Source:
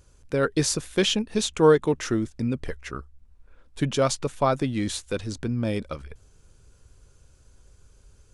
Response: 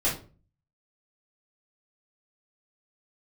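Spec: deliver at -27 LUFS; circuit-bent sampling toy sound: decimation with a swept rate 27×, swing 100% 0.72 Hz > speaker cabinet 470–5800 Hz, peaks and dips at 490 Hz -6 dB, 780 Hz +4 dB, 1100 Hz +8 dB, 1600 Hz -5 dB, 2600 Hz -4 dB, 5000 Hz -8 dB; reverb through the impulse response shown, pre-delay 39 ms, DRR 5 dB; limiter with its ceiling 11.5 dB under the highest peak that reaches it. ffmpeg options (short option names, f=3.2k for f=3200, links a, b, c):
-filter_complex "[0:a]alimiter=limit=-18dB:level=0:latency=1,asplit=2[a][b];[1:a]atrim=start_sample=2205,adelay=39[c];[b][c]afir=irnorm=-1:irlink=0,volume=-15dB[d];[a][d]amix=inputs=2:normalize=0,acrusher=samples=27:mix=1:aa=0.000001:lfo=1:lforange=27:lforate=0.72,highpass=470,equalizer=f=490:t=q:w=4:g=-6,equalizer=f=780:t=q:w=4:g=4,equalizer=f=1.1k:t=q:w=4:g=8,equalizer=f=1.6k:t=q:w=4:g=-5,equalizer=f=2.6k:t=q:w=4:g=-4,equalizer=f=5k:t=q:w=4:g=-8,lowpass=f=5.8k:w=0.5412,lowpass=f=5.8k:w=1.3066,volume=5.5dB"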